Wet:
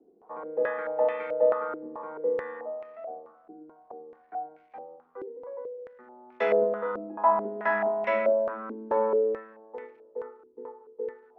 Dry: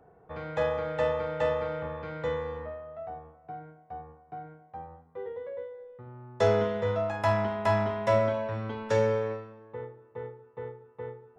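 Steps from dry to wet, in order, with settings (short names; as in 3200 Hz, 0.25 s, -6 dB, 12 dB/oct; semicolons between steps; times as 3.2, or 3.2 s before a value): steep high-pass 210 Hz 48 dB/oct; crackle 480/s -57 dBFS; stepped low-pass 4.6 Hz 330–2300 Hz; gain -3.5 dB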